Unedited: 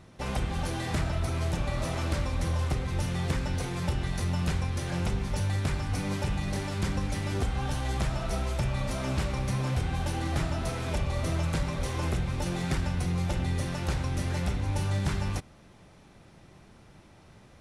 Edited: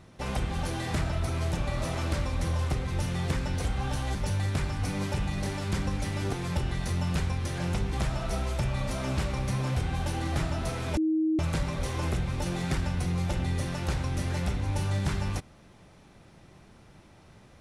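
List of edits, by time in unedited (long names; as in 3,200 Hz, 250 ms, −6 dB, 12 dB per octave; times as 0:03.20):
0:03.65–0:05.25: swap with 0:07.43–0:07.93
0:10.97–0:11.39: beep over 316 Hz −22.5 dBFS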